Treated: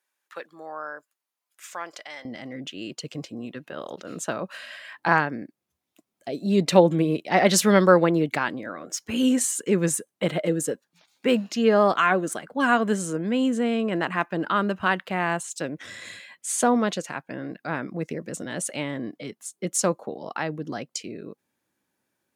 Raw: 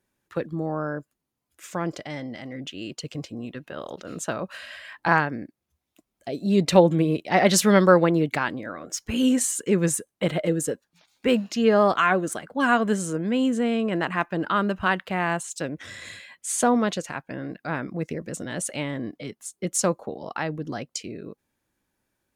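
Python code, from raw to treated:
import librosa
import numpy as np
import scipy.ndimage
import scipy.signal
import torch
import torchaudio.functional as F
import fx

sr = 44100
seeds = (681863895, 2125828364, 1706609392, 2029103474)

y = fx.highpass(x, sr, hz=fx.steps((0.0, 870.0), (2.25, 140.0)), slope=12)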